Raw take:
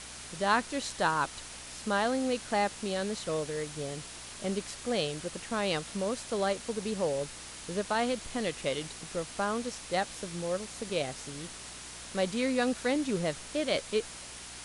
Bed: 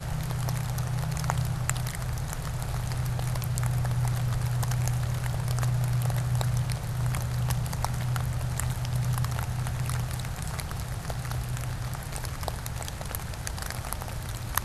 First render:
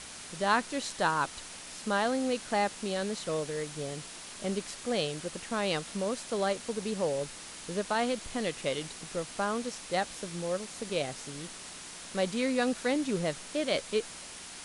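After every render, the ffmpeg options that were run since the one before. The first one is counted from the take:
-af "bandreject=f=60:t=h:w=4,bandreject=f=120:t=h:w=4"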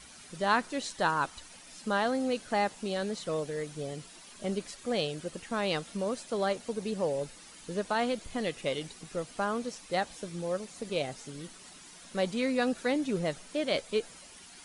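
-af "afftdn=nr=10:nf=-45"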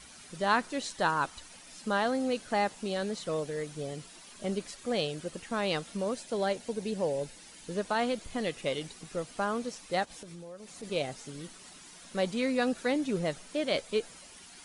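-filter_complex "[0:a]asettb=1/sr,asplit=3[a][b][c];[a]atrim=end=6.134[d];[b]atrim=start=6.13:end=7.69,asetpts=PTS-STARTPTS,afade=t=in:d=0.004:c=qsin,afade=t=out:st=1.556:d=0.004:c=qsin,equalizer=f=1.2k:w=6.4:g=-8.5[e];[c]atrim=start=7.686[f];[d][e]acrossfade=d=0.004:c1=hsin:c2=qsin[g];[g][f]acrossfade=d=0.004:c1=qsin:c2=hsin,asplit=3[h][i][j];[h]afade=t=out:st=10.04:d=0.02[k];[i]acompressor=threshold=-42dB:ratio=8:attack=3.2:release=140:knee=1:detection=peak,afade=t=in:st=10.04:d=0.02,afade=t=out:st=10.82:d=0.02[l];[j]afade=t=in:st=10.82:d=0.02[m];[k][l][m]amix=inputs=3:normalize=0"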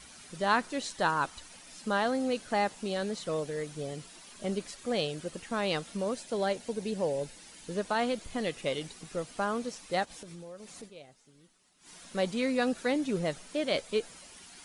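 -filter_complex "[0:a]asplit=3[a][b][c];[a]atrim=end=10.94,asetpts=PTS-STARTPTS,afade=t=out:st=10.8:d=0.14:c=qua:silence=0.125893[d];[b]atrim=start=10.94:end=11.76,asetpts=PTS-STARTPTS,volume=-18dB[e];[c]atrim=start=11.76,asetpts=PTS-STARTPTS,afade=t=in:d=0.14:c=qua:silence=0.125893[f];[d][e][f]concat=n=3:v=0:a=1"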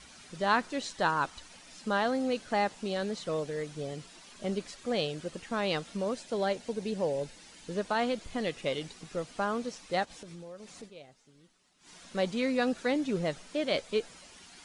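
-af "lowpass=7.4k"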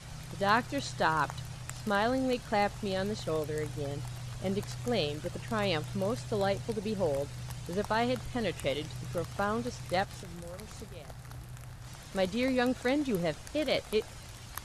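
-filter_complex "[1:a]volume=-13.5dB[a];[0:a][a]amix=inputs=2:normalize=0"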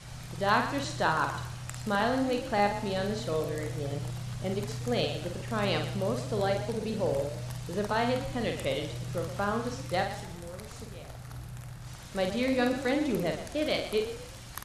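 -filter_complex "[0:a]asplit=2[a][b];[b]adelay=49,volume=-5.5dB[c];[a][c]amix=inputs=2:normalize=0,asplit=5[d][e][f][g][h];[e]adelay=120,afreqshift=32,volume=-11dB[i];[f]adelay=240,afreqshift=64,volume=-20.4dB[j];[g]adelay=360,afreqshift=96,volume=-29.7dB[k];[h]adelay=480,afreqshift=128,volume=-39.1dB[l];[d][i][j][k][l]amix=inputs=5:normalize=0"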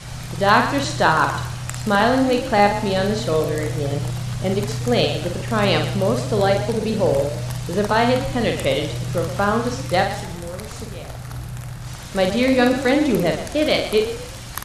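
-af "volume=11dB,alimiter=limit=-2dB:level=0:latency=1"

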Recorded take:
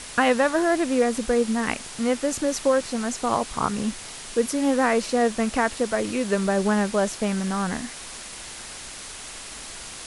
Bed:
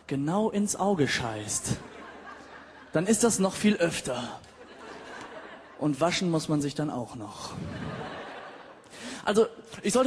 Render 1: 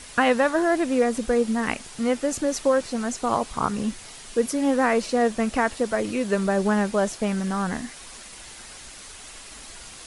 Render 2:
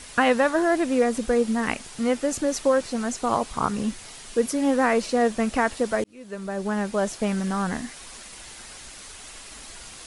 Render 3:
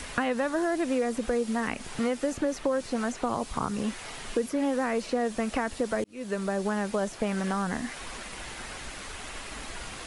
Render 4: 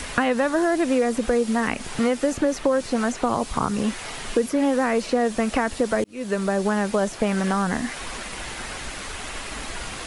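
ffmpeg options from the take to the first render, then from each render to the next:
-af "afftdn=nr=6:nf=-39"
-filter_complex "[0:a]asplit=2[a][b];[a]atrim=end=6.04,asetpts=PTS-STARTPTS,afade=t=out:st=6.036:d=0.004:c=hsin[c];[b]atrim=start=6.04,asetpts=PTS-STARTPTS,afade=t=in:d=1.18[d];[c][d]concat=n=2:v=0:a=1"
-filter_complex "[0:a]asplit=2[a][b];[b]alimiter=limit=-17dB:level=0:latency=1:release=121,volume=1dB[c];[a][c]amix=inputs=2:normalize=0,acrossover=split=380|3000[d][e][f];[d]acompressor=threshold=-33dB:ratio=4[g];[e]acompressor=threshold=-30dB:ratio=4[h];[f]acompressor=threshold=-47dB:ratio=4[i];[g][h][i]amix=inputs=3:normalize=0"
-af "volume=6.5dB"

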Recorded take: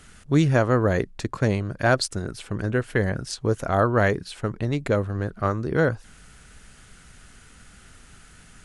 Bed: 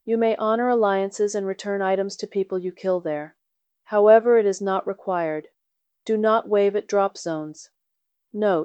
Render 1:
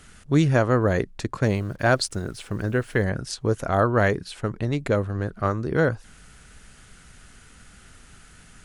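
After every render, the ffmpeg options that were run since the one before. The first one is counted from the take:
-filter_complex "[0:a]asettb=1/sr,asplit=3[a][b][c];[a]atrim=end=1.434[d];[b]atrim=start=1.43:end=3.03,asetpts=PTS-STARTPTS,afade=t=in:d=0.004:c=qsin,afade=t=out:st=1.596:d=0.004:c=qsin,acrusher=bits=8:mix=0:aa=0.5[e];[c]atrim=start=3.026[f];[d][e]acrossfade=d=0.004:c1=hsin:c2=qsin[g];[g][f]acrossfade=d=0.004:c1=qsin:c2=hsin"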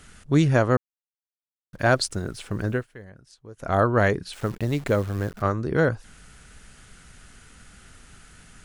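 -filter_complex "[0:a]asettb=1/sr,asplit=3[a][b][c];[a]atrim=end=4.334[d];[b]atrim=start=4.33:end=5.42,asetpts=PTS-STARTPTS,afade=t=in:d=0.004:c=qsin,afade=t=out:st=1.086:d=0.004:c=qsin,acrusher=bits=8:dc=4:mix=0:aa=0.000001[e];[c]atrim=start=5.416[f];[d][e]acrossfade=d=0.004:c1=hsin:c2=qsin[g];[g][f]acrossfade=d=0.004:c1=qsin:c2=hsin,asplit=5[h][i][j][k][l];[h]atrim=end=0.77,asetpts=PTS-STARTPTS,afade=t=out:st=0.766:d=0.004:c=hsin[m];[i]atrim=start=0.77:end=1.73,asetpts=PTS-STARTPTS,volume=0[n];[j]atrim=start=1.73:end=2.87,asetpts=PTS-STARTPTS,afade=t=in:d=0.004:c=hsin,afade=t=out:st=0.99:d=0.15:silence=0.0944061[o];[k]atrim=start=2.87:end=3.57,asetpts=PTS-STARTPTS,volume=-20.5dB[p];[l]atrim=start=3.57,asetpts=PTS-STARTPTS,afade=t=in:d=0.15:silence=0.0944061[q];[m][n][o][p][q]concat=n=5:v=0:a=1"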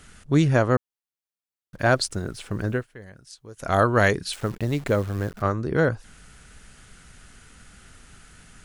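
-filter_complex "[0:a]asettb=1/sr,asplit=3[a][b][c];[a]atrim=end=3.024[d];[b]atrim=start=3.02:end=4.36,asetpts=PTS-STARTPTS,afade=t=in:d=0.004:c=qsin,afade=t=out:st=1.336:d=0.004:c=qsin,highshelf=f=2.4k:g=10[e];[c]atrim=start=4.356[f];[d][e]acrossfade=d=0.004:c1=hsin:c2=qsin[g];[g][f]acrossfade=d=0.004:c1=qsin:c2=hsin"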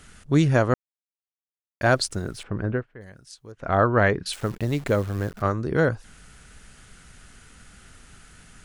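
-filter_complex "[0:a]asettb=1/sr,asplit=3[a][b][c];[a]atrim=end=2.434[d];[b]atrim=start=2.43:end=3.01,asetpts=PTS-STARTPTS,afade=t=in:d=0.004:c=qsin,afade=t=out:st=0.576:d=0.004:c=qsin,lowpass=1.9k[e];[c]atrim=start=3.006[f];[d][e]acrossfade=d=0.004:c1=hsin:c2=qsin[g];[g][f]acrossfade=d=0.004:c1=qsin:c2=hsin,asettb=1/sr,asplit=3[h][i][j];[h]atrim=end=3.524[k];[i]atrim=start=3.52:end=4.26,asetpts=PTS-STARTPTS,afade=t=in:d=0.004:c=qsin,afade=t=out:st=0.736:d=0.004:c=qsin,lowpass=2.2k[l];[j]atrim=start=4.256[m];[k][l]acrossfade=d=0.004:c1=hsin:c2=qsin[n];[n][m]acrossfade=d=0.004:c1=qsin:c2=hsin,asplit=3[o][p][q];[o]atrim=end=0.74,asetpts=PTS-STARTPTS,afade=t=out:st=0.736:d=0.004:c=hsin[r];[p]atrim=start=0.74:end=1.81,asetpts=PTS-STARTPTS,volume=0[s];[q]atrim=start=1.81,asetpts=PTS-STARTPTS,afade=t=in:d=0.004:c=hsin[t];[r][s][t]concat=n=3:v=0:a=1"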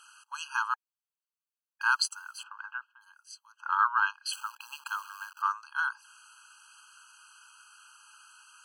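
-af "afftfilt=real='re*eq(mod(floor(b*sr/1024/820),2),1)':imag='im*eq(mod(floor(b*sr/1024/820),2),1)':win_size=1024:overlap=0.75"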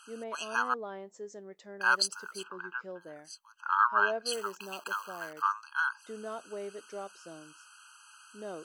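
-filter_complex "[1:a]volume=-21dB[a];[0:a][a]amix=inputs=2:normalize=0"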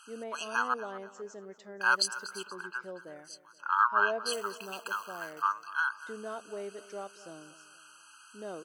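-af "aecho=1:1:238|476|714|952:0.141|0.0593|0.0249|0.0105"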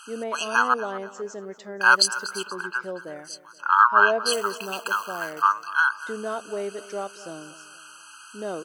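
-af "volume=9.5dB,alimiter=limit=-3dB:level=0:latency=1"

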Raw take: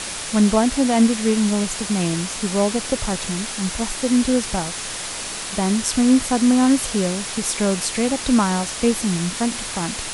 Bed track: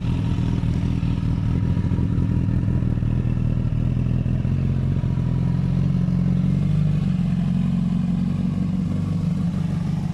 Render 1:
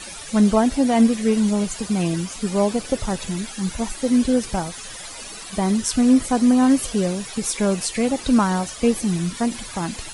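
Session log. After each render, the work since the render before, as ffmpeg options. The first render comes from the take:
-af "afftdn=nr=14:nf=-30"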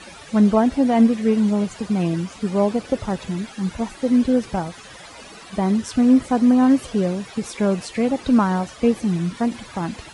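-af "highpass=56,aemphasis=mode=reproduction:type=75fm"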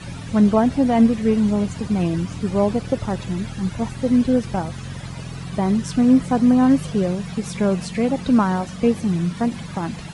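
-filter_complex "[1:a]volume=-11.5dB[a];[0:a][a]amix=inputs=2:normalize=0"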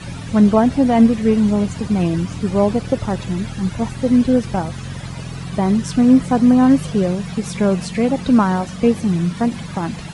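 -af "volume=3dB"

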